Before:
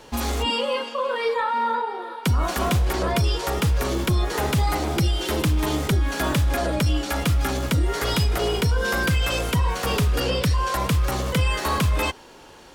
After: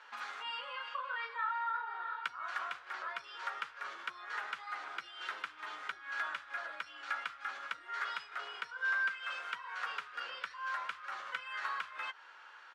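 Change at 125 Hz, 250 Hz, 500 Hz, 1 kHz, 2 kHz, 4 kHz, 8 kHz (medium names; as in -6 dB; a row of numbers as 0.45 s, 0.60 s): under -40 dB, under -40 dB, -30.0 dB, -13.0 dB, -8.0 dB, -18.0 dB, -29.5 dB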